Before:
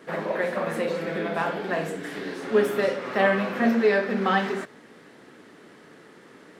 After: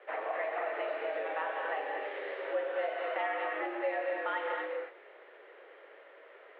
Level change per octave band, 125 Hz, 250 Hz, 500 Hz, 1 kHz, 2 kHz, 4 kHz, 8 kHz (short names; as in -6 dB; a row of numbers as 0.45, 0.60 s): under -40 dB, -21.0 dB, -9.5 dB, -6.5 dB, -8.5 dB, -12.0 dB, n/a